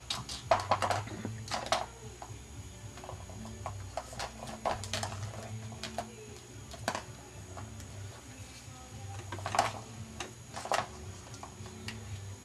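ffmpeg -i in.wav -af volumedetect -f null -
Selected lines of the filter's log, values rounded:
mean_volume: -38.8 dB
max_volume: -11.6 dB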